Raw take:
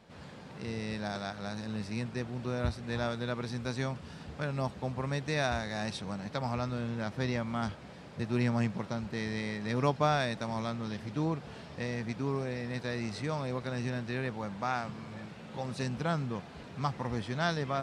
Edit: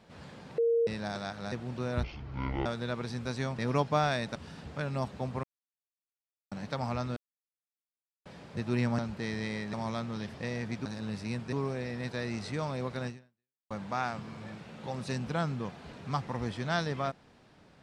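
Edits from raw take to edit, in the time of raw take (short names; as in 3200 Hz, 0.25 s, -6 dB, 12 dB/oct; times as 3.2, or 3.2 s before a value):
0.58–0.87 bleep 464 Hz -23 dBFS
1.52–2.19 move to 12.23
2.7–3.05 speed 56%
5.06–6.14 mute
6.79–7.88 mute
8.61–8.92 cut
9.67–10.44 move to 3.98
11.05–11.72 cut
13.77–14.41 fade out exponential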